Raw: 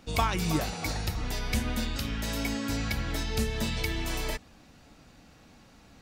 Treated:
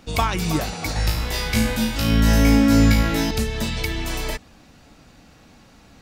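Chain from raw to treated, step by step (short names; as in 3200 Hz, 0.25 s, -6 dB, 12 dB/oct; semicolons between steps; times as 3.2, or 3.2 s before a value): 0.94–3.31 flutter echo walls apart 3.1 m, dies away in 0.54 s; gain +5.5 dB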